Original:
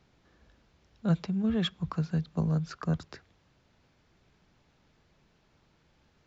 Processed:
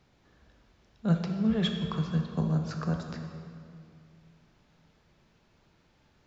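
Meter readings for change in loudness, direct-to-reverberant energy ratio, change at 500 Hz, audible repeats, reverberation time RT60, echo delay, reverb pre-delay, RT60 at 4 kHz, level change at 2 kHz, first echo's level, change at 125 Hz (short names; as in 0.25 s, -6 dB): +0.5 dB, 3.5 dB, +1.5 dB, none, 2.4 s, none, 16 ms, 1.7 s, +1.5 dB, none, +1.0 dB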